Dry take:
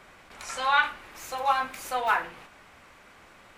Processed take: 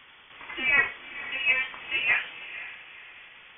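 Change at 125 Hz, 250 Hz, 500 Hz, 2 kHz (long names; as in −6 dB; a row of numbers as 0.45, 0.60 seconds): can't be measured, +0.5 dB, −8.0 dB, +5.0 dB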